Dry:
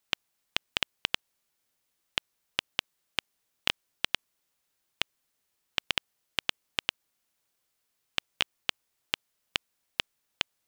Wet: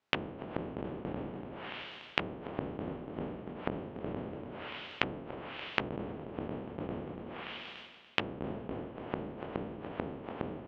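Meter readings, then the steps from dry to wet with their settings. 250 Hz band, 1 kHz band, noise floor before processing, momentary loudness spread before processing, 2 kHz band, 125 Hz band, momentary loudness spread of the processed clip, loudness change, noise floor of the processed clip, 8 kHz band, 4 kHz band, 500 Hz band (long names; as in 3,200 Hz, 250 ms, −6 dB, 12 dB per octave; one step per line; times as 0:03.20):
+13.5 dB, +2.0 dB, −79 dBFS, 5 LU, −5.0 dB, +11.5 dB, 7 LU, −5.5 dB, −51 dBFS, below −20 dB, −11.5 dB, +10.0 dB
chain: peak hold with a decay on every bin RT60 1.31 s
low-shelf EQ 430 Hz +5 dB
on a send: repeating echo 289 ms, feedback 33%, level −7 dB
on the sum: four-comb reverb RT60 1.2 s, combs from 26 ms, DRR 13.5 dB
treble cut that deepens with the level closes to 410 Hz, closed at −26 dBFS
high-pass filter 250 Hz 6 dB per octave
head-to-tape spacing loss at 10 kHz 27 dB
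reversed playback
upward compression, threshold −47 dBFS
reversed playback
level +4.5 dB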